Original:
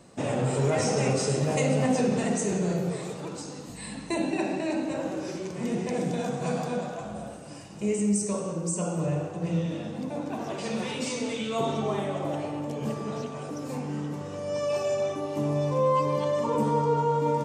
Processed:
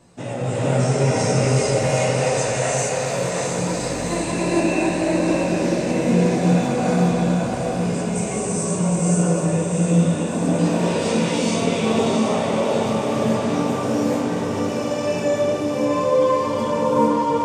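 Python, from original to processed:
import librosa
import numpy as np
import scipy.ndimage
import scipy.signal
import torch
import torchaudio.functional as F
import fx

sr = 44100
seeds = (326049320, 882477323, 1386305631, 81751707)

p1 = fx.steep_highpass(x, sr, hz=510.0, slope=48, at=(1.43, 3.11))
p2 = fx.rider(p1, sr, range_db=5, speed_s=0.5)
p3 = p1 + F.gain(torch.from_numpy(p2), 2.5).numpy()
p4 = fx.chorus_voices(p3, sr, voices=4, hz=0.29, base_ms=17, depth_ms=1.1, mix_pct=45)
p5 = fx.wow_flutter(p4, sr, seeds[0], rate_hz=2.1, depth_cents=19.0)
p6 = p5 + fx.echo_diffused(p5, sr, ms=712, feedback_pct=60, wet_db=-5.0, dry=0)
p7 = fx.rev_gated(p6, sr, seeds[1], gate_ms=470, shape='rising', drr_db=-7.5)
y = F.gain(torch.from_numpy(p7), -5.0).numpy()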